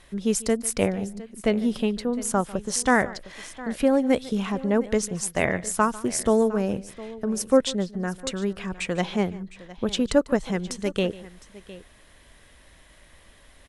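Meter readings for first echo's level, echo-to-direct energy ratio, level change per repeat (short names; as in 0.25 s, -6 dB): -19.5 dB, -15.5 dB, no steady repeat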